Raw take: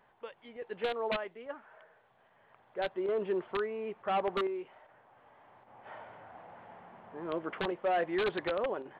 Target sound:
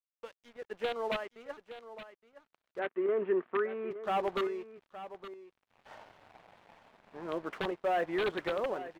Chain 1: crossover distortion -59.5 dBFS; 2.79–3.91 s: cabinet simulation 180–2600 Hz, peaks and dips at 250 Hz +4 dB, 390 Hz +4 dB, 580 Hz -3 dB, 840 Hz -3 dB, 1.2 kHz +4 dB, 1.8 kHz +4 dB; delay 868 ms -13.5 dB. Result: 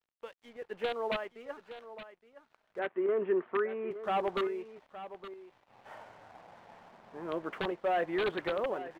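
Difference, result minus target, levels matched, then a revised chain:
crossover distortion: distortion -6 dB
crossover distortion -52 dBFS; 2.79–3.91 s: cabinet simulation 180–2600 Hz, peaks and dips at 250 Hz +4 dB, 390 Hz +4 dB, 580 Hz -3 dB, 840 Hz -3 dB, 1.2 kHz +4 dB, 1.8 kHz +4 dB; delay 868 ms -13.5 dB

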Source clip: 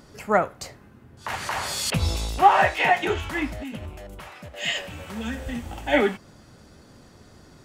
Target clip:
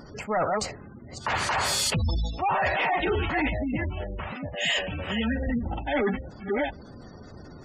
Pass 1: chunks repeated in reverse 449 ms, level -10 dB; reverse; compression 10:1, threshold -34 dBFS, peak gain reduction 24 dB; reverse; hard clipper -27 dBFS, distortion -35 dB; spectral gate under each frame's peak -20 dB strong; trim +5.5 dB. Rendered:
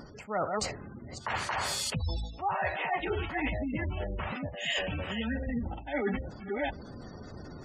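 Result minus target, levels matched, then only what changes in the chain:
compression: peak gain reduction +10.5 dB
change: compression 10:1, threshold -22.5 dBFS, peak gain reduction 14 dB

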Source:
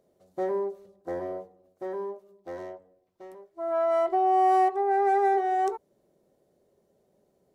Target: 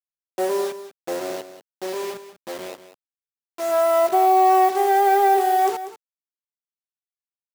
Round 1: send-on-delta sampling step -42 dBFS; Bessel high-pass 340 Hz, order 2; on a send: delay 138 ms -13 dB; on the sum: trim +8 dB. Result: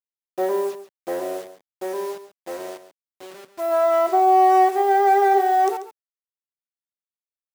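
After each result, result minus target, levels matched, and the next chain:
echo 53 ms early; send-on-delta sampling: distortion -6 dB
send-on-delta sampling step -42 dBFS; Bessel high-pass 340 Hz, order 2; on a send: delay 191 ms -13 dB; on the sum: trim +8 dB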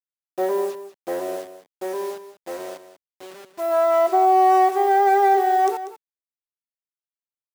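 send-on-delta sampling: distortion -6 dB
send-on-delta sampling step -35 dBFS; Bessel high-pass 340 Hz, order 2; on a send: delay 191 ms -13 dB; on the sum: trim +8 dB

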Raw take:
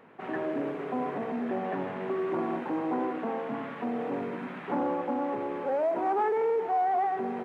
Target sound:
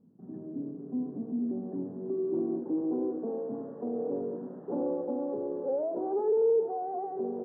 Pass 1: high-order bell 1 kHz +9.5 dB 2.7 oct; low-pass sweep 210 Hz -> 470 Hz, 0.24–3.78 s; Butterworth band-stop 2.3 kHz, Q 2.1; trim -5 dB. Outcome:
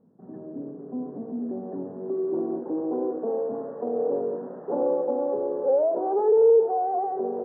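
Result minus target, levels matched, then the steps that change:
1 kHz band +3.0 dB
remove: high-order bell 1 kHz +9.5 dB 2.7 oct

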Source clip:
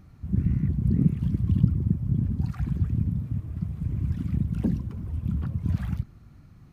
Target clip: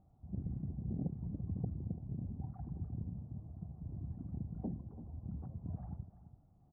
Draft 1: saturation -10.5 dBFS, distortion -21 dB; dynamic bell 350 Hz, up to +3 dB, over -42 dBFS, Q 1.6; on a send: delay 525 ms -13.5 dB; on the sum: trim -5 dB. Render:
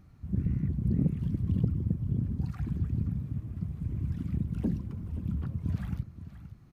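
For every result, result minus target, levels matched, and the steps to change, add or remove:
echo 188 ms late; 1 kHz band -8.0 dB
change: delay 337 ms -13.5 dB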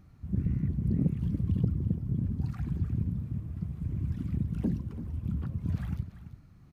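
1 kHz band -7.5 dB
add after dynamic bell: four-pole ladder low-pass 820 Hz, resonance 70%

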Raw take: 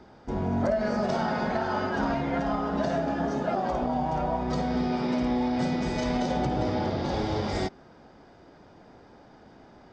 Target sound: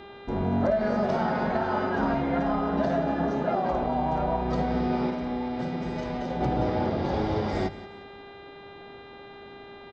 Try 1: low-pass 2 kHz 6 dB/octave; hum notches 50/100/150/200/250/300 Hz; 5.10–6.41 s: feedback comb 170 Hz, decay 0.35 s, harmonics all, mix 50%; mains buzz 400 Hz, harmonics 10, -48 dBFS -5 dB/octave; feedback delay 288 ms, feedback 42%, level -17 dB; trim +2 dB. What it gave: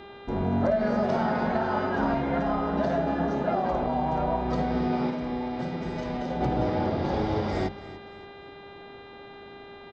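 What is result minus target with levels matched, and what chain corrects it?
echo 110 ms late
low-pass 2 kHz 6 dB/octave; hum notches 50/100/150/200/250/300 Hz; 5.10–6.41 s: feedback comb 170 Hz, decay 0.35 s, harmonics all, mix 50%; mains buzz 400 Hz, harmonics 10, -48 dBFS -5 dB/octave; feedback delay 178 ms, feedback 42%, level -17 dB; trim +2 dB

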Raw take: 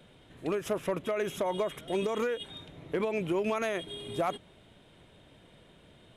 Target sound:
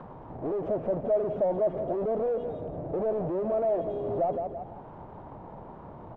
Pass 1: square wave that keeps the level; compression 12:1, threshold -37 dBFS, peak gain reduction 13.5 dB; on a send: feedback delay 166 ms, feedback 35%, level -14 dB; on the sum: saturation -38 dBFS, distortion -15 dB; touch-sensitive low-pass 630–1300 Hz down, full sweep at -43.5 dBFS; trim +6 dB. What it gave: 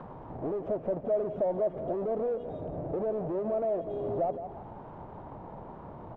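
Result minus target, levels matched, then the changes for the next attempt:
compression: peak gain reduction +9 dB
change: compression 12:1, threshold -27 dBFS, peak gain reduction 4.5 dB

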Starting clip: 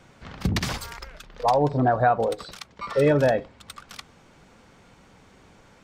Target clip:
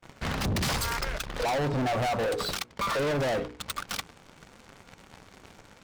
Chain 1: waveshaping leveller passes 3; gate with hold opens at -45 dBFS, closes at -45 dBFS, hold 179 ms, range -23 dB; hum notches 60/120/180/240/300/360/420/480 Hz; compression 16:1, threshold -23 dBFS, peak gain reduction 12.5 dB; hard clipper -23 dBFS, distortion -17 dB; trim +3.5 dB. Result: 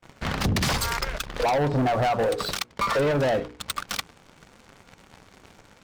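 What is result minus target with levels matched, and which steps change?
hard clipper: distortion -8 dB
change: hard clipper -29.5 dBFS, distortion -9 dB

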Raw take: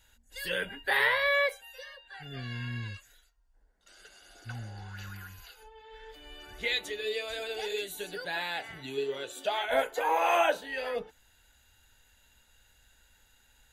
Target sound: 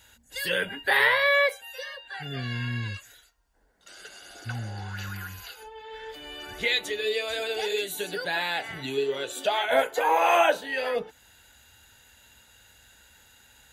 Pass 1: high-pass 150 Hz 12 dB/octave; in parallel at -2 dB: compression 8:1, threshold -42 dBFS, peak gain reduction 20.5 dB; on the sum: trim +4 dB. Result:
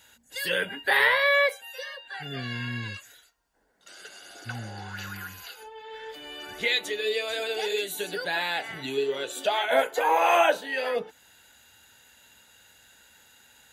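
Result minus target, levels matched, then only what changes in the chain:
125 Hz band -4.5 dB
change: high-pass 75 Hz 12 dB/octave

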